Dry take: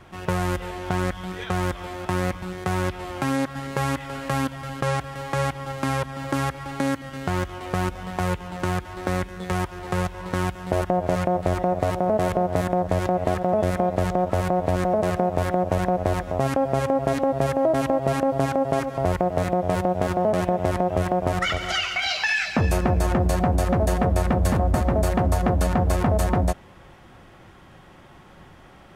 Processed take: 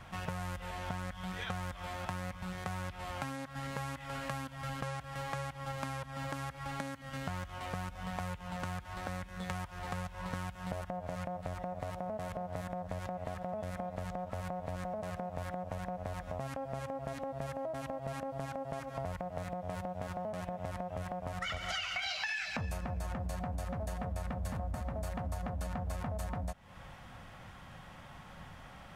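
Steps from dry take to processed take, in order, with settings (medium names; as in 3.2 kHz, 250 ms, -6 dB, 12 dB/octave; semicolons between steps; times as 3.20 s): compression 10:1, threshold -32 dBFS, peak gain reduction 16.5 dB; peaking EQ 360 Hz -15 dB 0.54 oct; trim -1.5 dB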